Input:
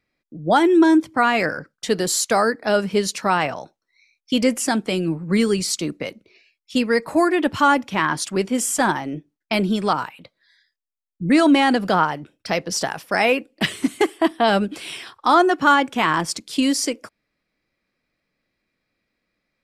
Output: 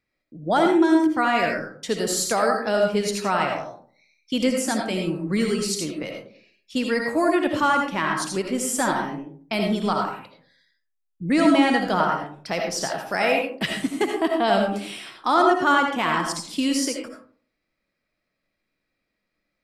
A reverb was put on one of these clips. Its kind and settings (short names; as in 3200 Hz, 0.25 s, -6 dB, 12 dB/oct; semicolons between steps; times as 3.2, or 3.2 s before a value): digital reverb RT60 0.5 s, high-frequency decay 0.4×, pre-delay 40 ms, DRR 1.5 dB; gain -5 dB